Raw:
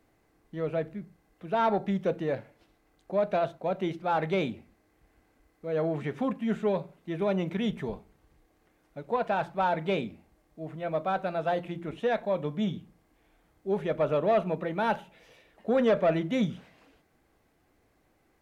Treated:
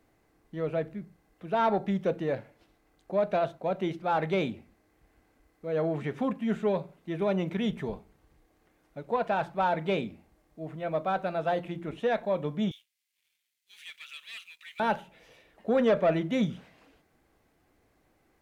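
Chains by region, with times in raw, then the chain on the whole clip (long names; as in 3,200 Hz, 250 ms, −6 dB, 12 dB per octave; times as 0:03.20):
0:12.71–0:14.80: inverse Chebyshev high-pass filter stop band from 750 Hz, stop band 60 dB + leveller curve on the samples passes 2
whole clip: no processing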